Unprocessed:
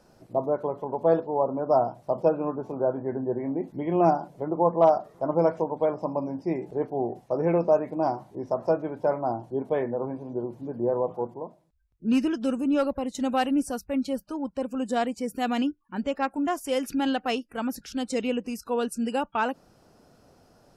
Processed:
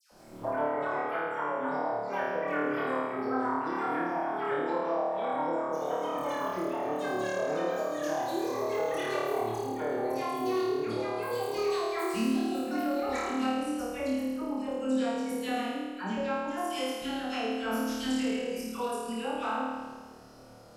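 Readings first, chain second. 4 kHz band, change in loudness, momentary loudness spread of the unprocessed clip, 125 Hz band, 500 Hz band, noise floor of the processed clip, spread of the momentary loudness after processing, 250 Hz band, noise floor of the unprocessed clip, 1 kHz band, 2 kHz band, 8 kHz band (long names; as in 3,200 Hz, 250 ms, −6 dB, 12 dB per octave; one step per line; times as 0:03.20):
0.0 dB, −4.5 dB, 8 LU, −10.0 dB, −5.5 dB, −48 dBFS, 4 LU, −4.5 dB, −60 dBFS, −2.5 dB, +2.5 dB, −0.5 dB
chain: mains-hum notches 50/100/150 Hz
delay with pitch and tempo change per echo 162 ms, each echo +7 semitones, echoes 2
all-pass dispersion lows, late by 115 ms, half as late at 1,600 Hz
downward compressor 6 to 1, threshold −35 dBFS, peak gain reduction 19 dB
flutter between parallel walls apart 4.6 metres, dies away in 1.4 s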